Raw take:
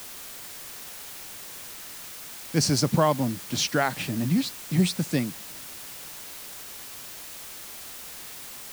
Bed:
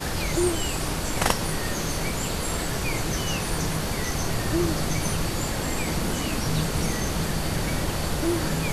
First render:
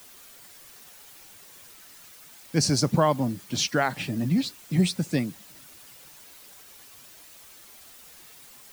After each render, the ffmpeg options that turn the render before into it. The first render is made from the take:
-af "afftdn=nr=10:nf=-41"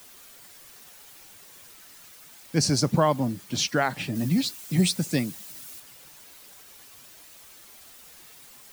-filter_complex "[0:a]asettb=1/sr,asplit=3[a][b][c];[a]atrim=end=4.154[d];[b]atrim=start=4.15:end=5.8,asetpts=PTS-STARTPTS,afade=t=in:d=0.004:c=qsin,afade=t=out:st=1.646:d=0.004:c=qsin,highshelf=f=4.1k:g=8[e];[c]atrim=start=5.796[f];[d][e]acrossfade=d=0.004:c1=hsin:c2=qsin[g];[g][f]acrossfade=d=0.004:c1=qsin:c2=hsin"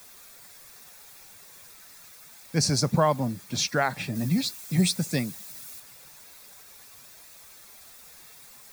-af "equalizer=f=310:w=2.7:g=-6,bandreject=f=3k:w=6.9"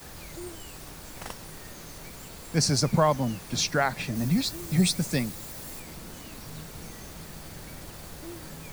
-filter_complex "[1:a]volume=-17dB[a];[0:a][a]amix=inputs=2:normalize=0"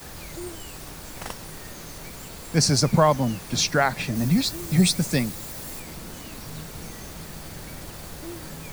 -af "volume=4dB"

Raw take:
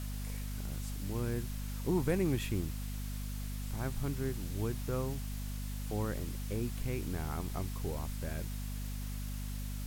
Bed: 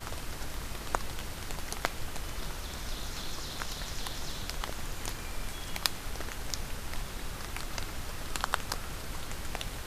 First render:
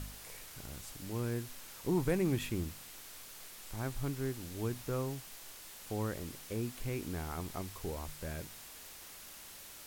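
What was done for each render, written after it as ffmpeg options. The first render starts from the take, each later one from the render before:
-af "bandreject=f=50:t=h:w=4,bandreject=f=100:t=h:w=4,bandreject=f=150:t=h:w=4,bandreject=f=200:t=h:w=4,bandreject=f=250:t=h:w=4"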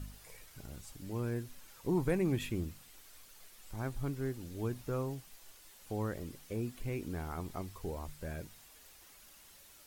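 -af "afftdn=nr=9:nf=-51"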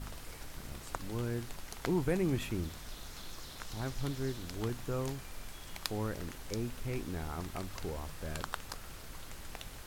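-filter_complex "[1:a]volume=-9dB[a];[0:a][a]amix=inputs=2:normalize=0"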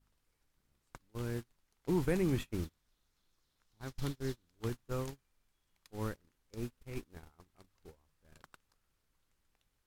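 -af "agate=range=-32dB:threshold=-34dB:ratio=16:detection=peak,equalizer=f=670:w=3.1:g=-4"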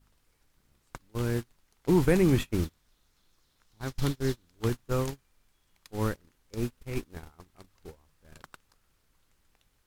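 -af "volume=9dB"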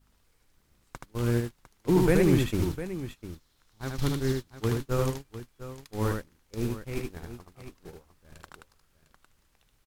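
-af "aecho=1:1:76|703:0.668|0.237"

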